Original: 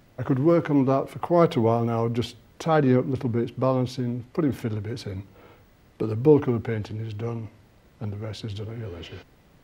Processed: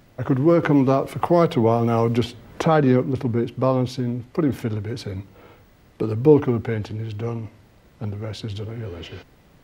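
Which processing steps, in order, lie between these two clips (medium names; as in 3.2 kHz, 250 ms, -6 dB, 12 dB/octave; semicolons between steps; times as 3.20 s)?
0.63–3.03 s: three bands compressed up and down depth 70%; trim +3 dB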